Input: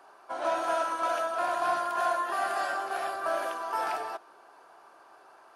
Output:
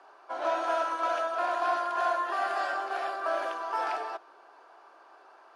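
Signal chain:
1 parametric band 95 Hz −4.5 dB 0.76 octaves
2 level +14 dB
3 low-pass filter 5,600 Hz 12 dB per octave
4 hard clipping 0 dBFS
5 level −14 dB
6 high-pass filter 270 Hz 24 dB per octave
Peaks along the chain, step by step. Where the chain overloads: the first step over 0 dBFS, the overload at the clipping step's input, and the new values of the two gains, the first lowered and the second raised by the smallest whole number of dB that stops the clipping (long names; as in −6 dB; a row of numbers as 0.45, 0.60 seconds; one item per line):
−18.0, −4.0, −4.0, −4.0, −18.0, −17.0 dBFS
no step passes full scale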